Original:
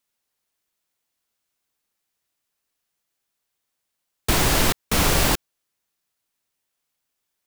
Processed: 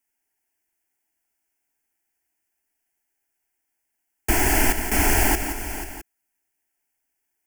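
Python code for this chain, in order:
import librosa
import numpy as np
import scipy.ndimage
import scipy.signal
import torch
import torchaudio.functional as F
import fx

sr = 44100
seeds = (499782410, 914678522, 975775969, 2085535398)

y = fx.fixed_phaser(x, sr, hz=780.0, stages=8)
y = fx.echo_multitap(y, sr, ms=(174, 487, 660), db=(-9.0, -12.5, -17.0))
y = F.gain(torch.from_numpy(y), 2.0).numpy()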